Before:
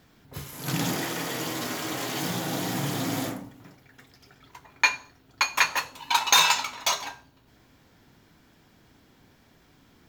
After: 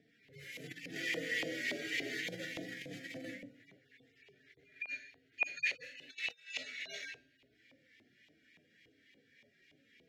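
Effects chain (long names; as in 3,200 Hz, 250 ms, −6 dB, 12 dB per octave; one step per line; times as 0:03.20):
harmonic-percussive split with one part muted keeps harmonic
compressor whose output falls as the input rises −33 dBFS, ratio −0.5
Chebyshev band-stop filter 530–1,900 Hz, order 3
auto-filter band-pass saw up 3.5 Hz 660–2,500 Hz
level +7.5 dB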